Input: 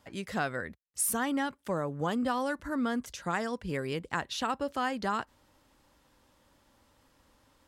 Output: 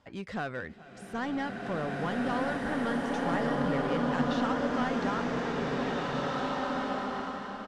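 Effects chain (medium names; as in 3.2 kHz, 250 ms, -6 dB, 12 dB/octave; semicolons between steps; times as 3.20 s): de-esser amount 100%; treble shelf 8.3 kHz -10.5 dB; in parallel at -7 dB: wavefolder -32.5 dBFS; on the sum: distance through air 66 m; on a send: delay 423 ms -19.5 dB; on the sum: swelling reverb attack 2080 ms, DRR -4.5 dB; trim -3 dB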